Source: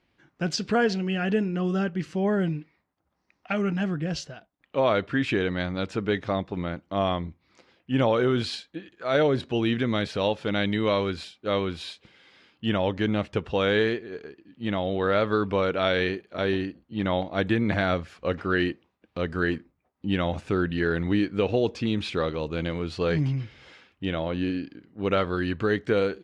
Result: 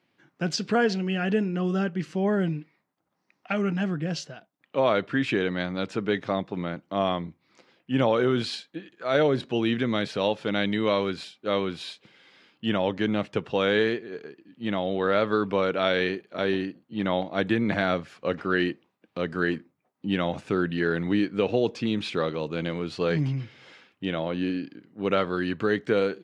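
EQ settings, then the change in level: HPF 120 Hz 24 dB/oct; 0.0 dB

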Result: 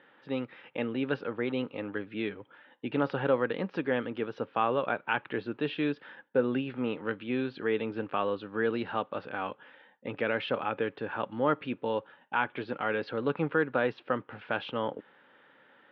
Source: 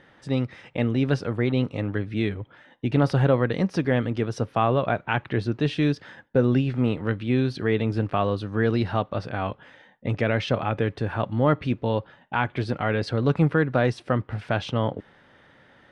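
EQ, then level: air absorption 95 m; speaker cabinet 370–3300 Hz, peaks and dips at 370 Hz -4 dB, 670 Hz -10 dB, 1100 Hz -3 dB, 2000 Hz -6 dB; 0.0 dB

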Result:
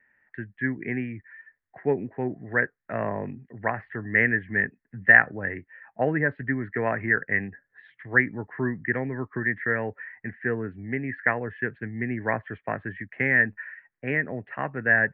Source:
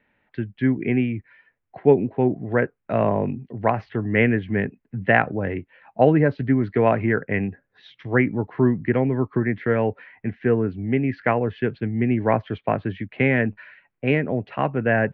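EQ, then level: synth low-pass 1800 Hz, resonance Q 7.8; -9.5 dB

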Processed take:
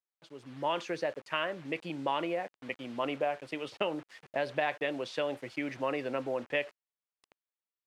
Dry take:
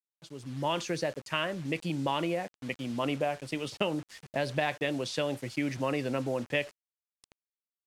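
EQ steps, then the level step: tone controls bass -13 dB, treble -13 dB; 0.0 dB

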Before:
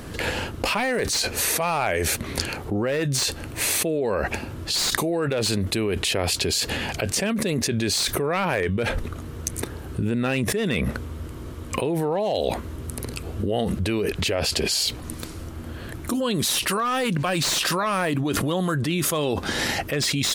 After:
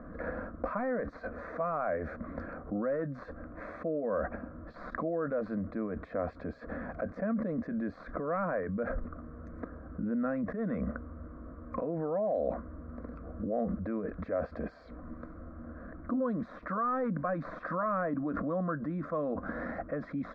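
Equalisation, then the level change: ladder low-pass 1500 Hz, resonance 25%; fixed phaser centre 580 Hz, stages 8; 0.0 dB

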